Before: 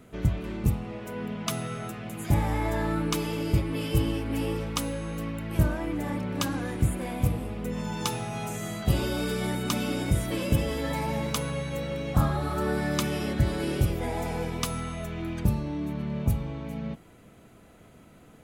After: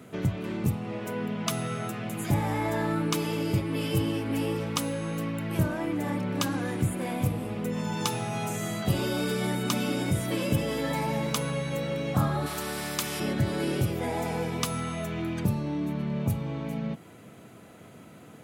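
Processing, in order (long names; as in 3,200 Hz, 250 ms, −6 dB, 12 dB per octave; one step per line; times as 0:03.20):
high-pass filter 96 Hz 24 dB per octave
in parallel at +2 dB: downward compressor, threshold −35 dBFS, peak gain reduction 15 dB
0:08.58–0:09.11: on the sum: bit-depth reduction 12 bits, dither triangular
0:12.46–0:13.20: every bin compressed towards the loudest bin 2 to 1
level −2.5 dB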